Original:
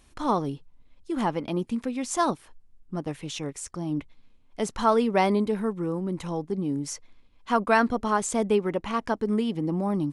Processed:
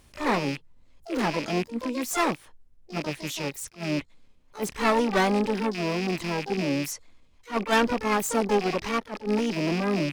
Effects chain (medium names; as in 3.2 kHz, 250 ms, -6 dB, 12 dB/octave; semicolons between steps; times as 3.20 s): rattle on loud lows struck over -42 dBFS, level -25 dBFS; dynamic bell 1.9 kHz, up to +3 dB, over -48 dBFS, Q 5.5; one-sided clip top -25.5 dBFS, bottom -10.5 dBFS; harmony voices +4 st -14 dB, +12 st -5 dB; attacks held to a fixed rise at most 260 dB/s